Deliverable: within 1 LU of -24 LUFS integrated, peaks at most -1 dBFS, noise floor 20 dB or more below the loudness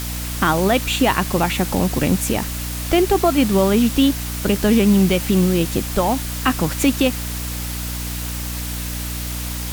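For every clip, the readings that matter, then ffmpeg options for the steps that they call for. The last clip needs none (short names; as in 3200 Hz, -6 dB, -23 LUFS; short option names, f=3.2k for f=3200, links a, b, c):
hum 60 Hz; harmonics up to 300 Hz; hum level -25 dBFS; noise floor -27 dBFS; noise floor target -39 dBFS; loudness -19.0 LUFS; peak -4.0 dBFS; loudness target -24.0 LUFS
-> -af "bandreject=f=60:t=h:w=6,bandreject=f=120:t=h:w=6,bandreject=f=180:t=h:w=6,bandreject=f=240:t=h:w=6,bandreject=f=300:t=h:w=6"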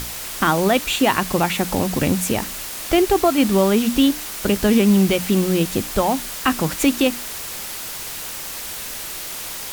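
hum none; noise floor -31 dBFS; noise floor target -40 dBFS
-> -af "afftdn=nr=9:nf=-31"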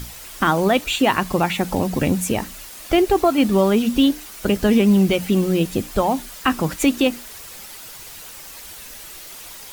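noise floor -38 dBFS; noise floor target -39 dBFS
-> -af "afftdn=nr=6:nf=-38"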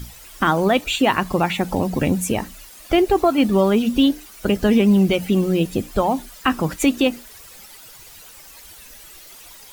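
noise floor -43 dBFS; loudness -19.0 LUFS; peak -5.0 dBFS; loudness target -24.0 LUFS
-> -af "volume=-5dB"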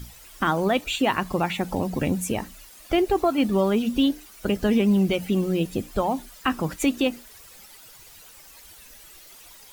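loudness -24.0 LUFS; peak -10.0 dBFS; noise floor -48 dBFS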